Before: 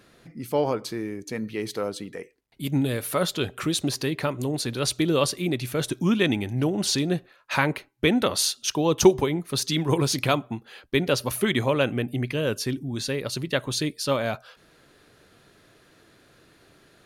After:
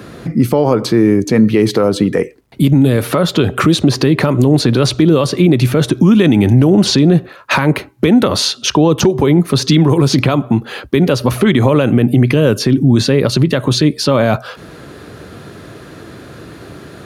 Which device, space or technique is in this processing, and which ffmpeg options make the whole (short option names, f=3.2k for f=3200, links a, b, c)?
mastering chain: -filter_complex "[0:a]highpass=f=54:w=0.5412,highpass=f=54:w=1.3066,equalizer=f=1.2k:t=o:w=0.77:g=3.5,acrossover=split=95|5500[a][b][c];[a]acompressor=threshold=-54dB:ratio=4[d];[b]acompressor=threshold=-24dB:ratio=4[e];[c]acompressor=threshold=-47dB:ratio=4[f];[d][e][f]amix=inputs=3:normalize=0,acompressor=threshold=-32dB:ratio=1.5,tiltshelf=f=640:g=5.5,asoftclip=type=hard:threshold=-16.5dB,alimiter=level_in=22.5dB:limit=-1dB:release=50:level=0:latency=1,volume=-1dB"